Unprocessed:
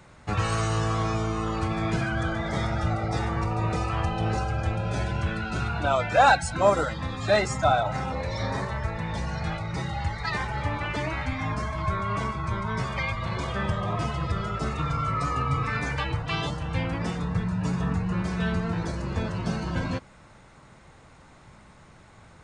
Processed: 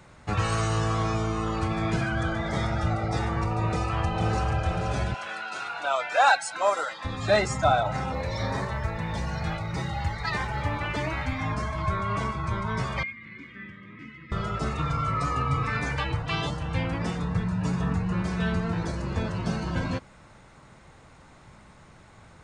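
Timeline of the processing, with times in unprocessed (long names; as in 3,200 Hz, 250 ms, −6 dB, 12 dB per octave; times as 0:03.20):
0:03.66–0:04.45: delay throw 480 ms, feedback 50%, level −6 dB
0:05.14–0:07.05: high-pass filter 700 Hz
0:08.14–0:11.41: floating-point word with a short mantissa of 6 bits
0:13.03–0:14.32: pair of resonant band-passes 730 Hz, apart 3 octaves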